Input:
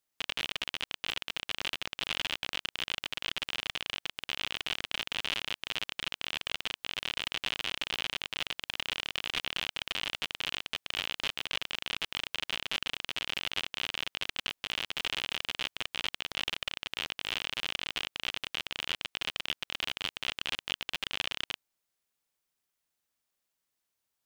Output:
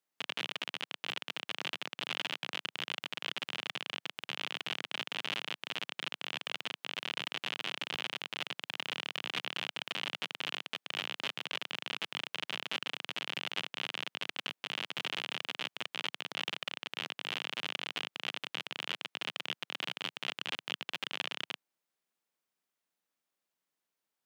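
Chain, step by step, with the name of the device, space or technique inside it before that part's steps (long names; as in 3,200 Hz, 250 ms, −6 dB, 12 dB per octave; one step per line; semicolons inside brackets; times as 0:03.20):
high-pass filter 150 Hz 24 dB per octave
behind a face mask (high-shelf EQ 3,000 Hz −7 dB)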